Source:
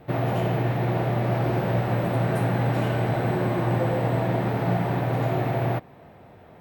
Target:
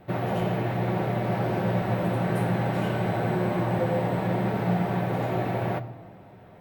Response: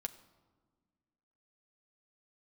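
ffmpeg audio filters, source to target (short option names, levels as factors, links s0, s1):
-filter_complex "[1:a]atrim=start_sample=2205,asetrate=42777,aresample=44100[s0];[0:a][s0]afir=irnorm=-1:irlink=0"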